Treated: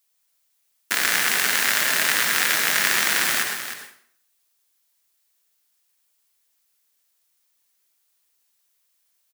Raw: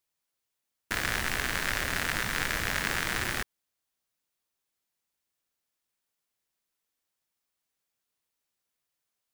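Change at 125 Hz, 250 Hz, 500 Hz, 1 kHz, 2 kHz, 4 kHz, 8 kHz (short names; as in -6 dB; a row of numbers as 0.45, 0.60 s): -7.5, +1.5, +4.5, +7.0, +9.0, +11.5, +14.0 dB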